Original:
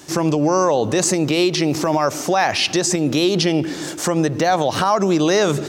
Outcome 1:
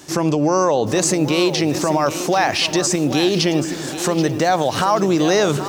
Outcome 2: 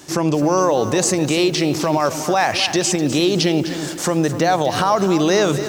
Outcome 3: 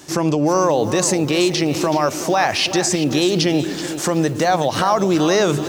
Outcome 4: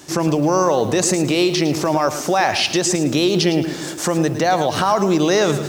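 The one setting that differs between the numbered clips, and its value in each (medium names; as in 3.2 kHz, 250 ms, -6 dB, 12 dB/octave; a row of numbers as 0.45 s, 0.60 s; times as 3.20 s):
bit-crushed delay, time: 781 ms, 253 ms, 377 ms, 109 ms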